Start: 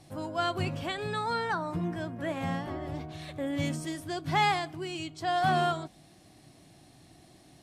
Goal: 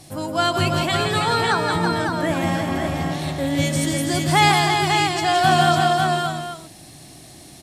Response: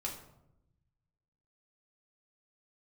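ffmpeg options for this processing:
-af "highshelf=f=4500:g=10,aecho=1:1:168|331|551|816:0.501|0.501|0.596|0.237,volume=2.66"

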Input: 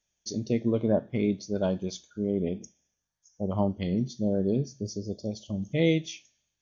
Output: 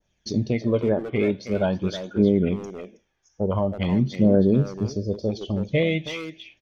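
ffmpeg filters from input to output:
-filter_complex "[0:a]lowpass=3000,adynamicequalizer=threshold=0.00447:dfrequency=2300:dqfactor=0.71:tfrequency=2300:tqfactor=0.71:attack=5:release=100:ratio=0.375:range=3:mode=boostabove:tftype=bell,asplit=2[s0][s1];[s1]acompressor=threshold=0.01:ratio=6,volume=0.708[s2];[s0][s2]amix=inputs=2:normalize=0,alimiter=limit=0.126:level=0:latency=1:release=363,acontrast=68,asplit=2[s3][s4];[s4]adelay=320,highpass=300,lowpass=3400,asoftclip=type=hard:threshold=0.0891,volume=0.447[s5];[s3][s5]amix=inputs=2:normalize=0,aphaser=in_gain=1:out_gain=1:delay=2.7:decay=0.4:speed=0.46:type=triangular"

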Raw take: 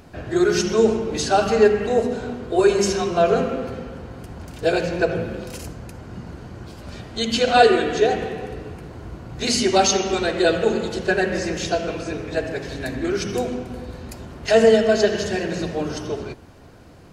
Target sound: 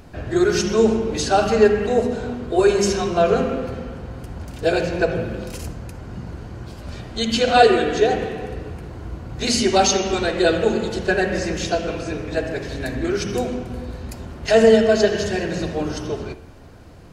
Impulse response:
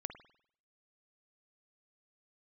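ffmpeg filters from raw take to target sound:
-filter_complex "[0:a]asplit=2[s0][s1];[1:a]atrim=start_sample=2205,lowshelf=f=81:g=11.5[s2];[s1][s2]afir=irnorm=-1:irlink=0,volume=1.58[s3];[s0][s3]amix=inputs=2:normalize=0,volume=0.501"

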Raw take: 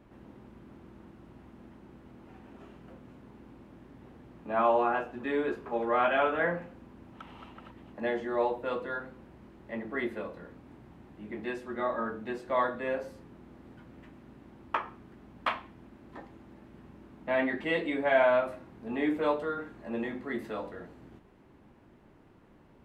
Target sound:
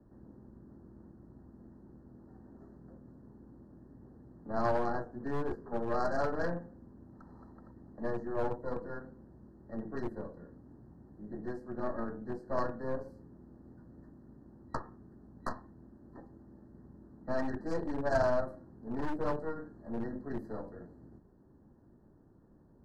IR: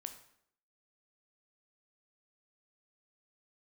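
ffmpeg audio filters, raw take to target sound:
-filter_complex "[0:a]aeval=exprs='0.237*(cos(1*acos(clip(val(0)/0.237,-1,1)))-cos(1*PI/2))+0.0944*(cos(2*acos(clip(val(0)/0.237,-1,1)))-cos(2*PI/2))+0.0106*(cos(6*acos(clip(val(0)/0.237,-1,1)))-cos(6*PI/2))+0.0106*(cos(7*acos(clip(val(0)/0.237,-1,1)))-cos(7*PI/2))+0.0376*(cos(8*acos(clip(val(0)/0.237,-1,1)))-cos(8*PI/2))':c=same,afftfilt=real='re*(1-between(b*sr/4096,1900,4000))':imag='im*(1-between(b*sr/4096,1900,4000))':win_size=4096:overlap=0.75,tiltshelf=f=710:g=7.5,acrossover=split=160|510|1400[s0][s1][s2][s3];[s1]aeval=exprs='0.0355*(abs(mod(val(0)/0.0355+3,4)-2)-1)':c=same[s4];[s0][s4][s2][s3]amix=inputs=4:normalize=0,volume=0.562"

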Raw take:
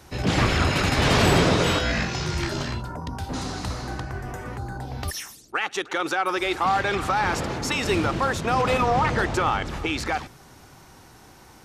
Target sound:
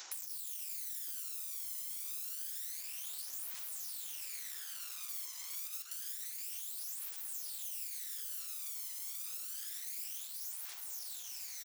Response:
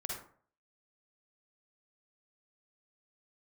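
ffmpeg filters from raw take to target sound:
-filter_complex "[0:a]aresample=16000,asoftclip=type=hard:threshold=0.0501,aresample=44100,highshelf=f=6100:g=12,aeval=exprs='(mod(37.6*val(0)+1,2)-1)/37.6':c=same,aderivative,asplit=8[s0][s1][s2][s3][s4][s5][s6][s7];[s1]adelay=477,afreqshift=43,volume=0.596[s8];[s2]adelay=954,afreqshift=86,volume=0.32[s9];[s3]adelay=1431,afreqshift=129,volume=0.174[s10];[s4]adelay=1908,afreqshift=172,volume=0.0933[s11];[s5]adelay=2385,afreqshift=215,volume=0.0507[s12];[s6]adelay=2862,afreqshift=258,volume=0.0272[s13];[s7]adelay=3339,afreqshift=301,volume=0.0148[s14];[s0][s8][s9][s10][s11][s12][s13][s14]amix=inputs=8:normalize=0,acompressor=threshold=0.00355:ratio=5,highpass=480,aphaser=in_gain=1:out_gain=1:delay=1:decay=0.62:speed=0.28:type=triangular,volume=1.88"

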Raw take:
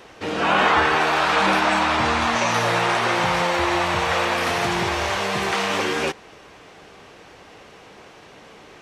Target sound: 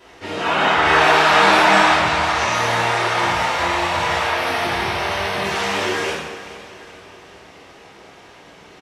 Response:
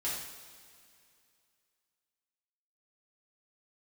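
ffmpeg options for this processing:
-filter_complex "[0:a]asettb=1/sr,asplit=3[s0][s1][s2];[s0]atrim=end=0.854[s3];[s1]atrim=start=0.85:end=1.94,asetpts=PTS-STARTPTS,afade=t=in:d=0.004:c=qsin,afade=t=out:st=1.086:d=0.004:c=qsin,acontrast=27[s4];[s2]atrim=start=1.936[s5];[s3][s4]acrossfade=d=0.004:c1=hsin:c2=qsin[s6];[s6][s5]acrossfade=d=0.004:c1=qsin:c2=hsin,asettb=1/sr,asplit=3[s7][s8][s9];[s7]atrim=end=4.224[s10];[s8]atrim=start=4.22:end=5.44,asetpts=PTS-STARTPTS,afade=t=in:d=0.004:c=qsin,afade=t=out:st=1.216:d=0.004:c=qsin,equalizer=f=7100:t=o:w=0.29:g=-13.5[s11];[s9]atrim=start=5.436[s12];[s10][s11]acrossfade=d=0.004:c1=hsin:c2=qsin[s13];[s13][s12]acrossfade=d=0.004:c1=qsin:c2=hsin,aecho=1:1:426|852|1278|1704|2130:0.126|0.0692|0.0381|0.0209|0.0115[s14];[1:a]atrim=start_sample=2205[s15];[s14][s15]afir=irnorm=-1:irlink=0,volume=0.75"

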